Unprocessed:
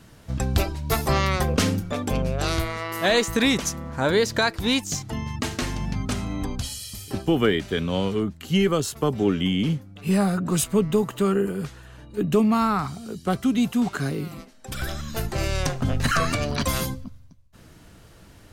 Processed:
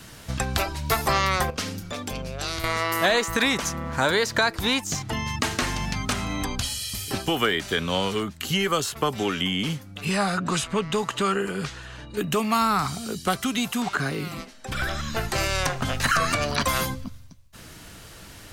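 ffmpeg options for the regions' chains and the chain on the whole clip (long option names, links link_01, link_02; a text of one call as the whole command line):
ffmpeg -i in.wav -filter_complex "[0:a]asettb=1/sr,asplit=3[link_01][link_02][link_03];[link_01]atrim=end=1.504[link_04];[link_02]atrim=start=1.5:end=2.64,asetpts=PTS-STARTPTS,afade=type=in:duration=0.004:curve=qsin,afade=type=out:start_time=1.136:duration=0.004:curve=qsin,equalizer=frequency=4900:width=1.5:gain=4,acompressor=threshold=-28dB:ratio=2:attack=3.2:release=140:knee=1:detection=peak,agate=range=-7dB:threshold=-26dB:ratio=16:release=100:detection=peak[link_05];[link_03]atrim=start=2.636[link_06];[link_04][link_05]acrossfade=duration=0.004:curve1=hsin:curve2=qsin[link_07];[link_07][link_06]acrossfade=duration=0.004:curve1=qsin:curve2=hsin,asettb=1/sr,asplit=3[link_08][link_09][link_10];[link_08]atrim=end=10.054[link_11];[link_09]atrim=start=10.05:end=12.17,asetpts=PTS-STARTPTS,afade=type=in:duration=0.004:curve=qsin,afade=type=out:start_time=2.116:duration=0.004:curve=qsin,lowpass=6600,asoftclip=type=hard:threshold=-11dB[link_12];[link_10]atrim=start=12.166[link_13];[link_11][link_12]acrossfade=duration=0.004:curve1=hsin:curve2=qsin[link_14];[link_14][link_13]acrossfade=duration=0.004:curve1=qsin:curve2=hsin,asettb=1/sr,asplit=3[link_15][link_16][link_17];[link_15]atrim=end=13.824[link_18];[link_16]atrim=start=13.82:end=15.32,asetpts=PTS-STARTPTS,afade=type=in:duration=0.004:curve=qsin,afade=type=out:start_time=1.496:duration=0.004:curve=qsin,acrossover=split=2600[link_19][link_20];[link_20]acompressor=threshold=-45dB:ratio=4:attack=1:release=60[link_21];[link_19][link_21]amix=inputs=2:normalize=0,highshelf=frequency=8800:gain=-9.5[link_22];[link_17]atrim=start=15.316[link_23];[link_18][link_22]acrossfade=duration=0.004:curve1=hsin:curve2=qsin[link_24];[link_24][link_23]acrossfade=duration=0.004:curve1=qsin:curve2=hsin,tiltshelf=frequency=1100:gain=-4.5,acrossover=split=660|1700|3400[link_25][link_26][link_27][link_28];[link_25]acompressor=threshold=-34dB:ratio=4[link_29];[link_26]acompressor=threshold=-29dB:ratio=4[link_30];[link_27]acompressor=threshold=-42dB:ratio=4[link_31];[link_28]acompressor=threshold=-39dB:ratio=4[link_32];[link_29][link_30][link_31][link_32]amix=inputs=4:normalize=0,volume=7dB" out.wav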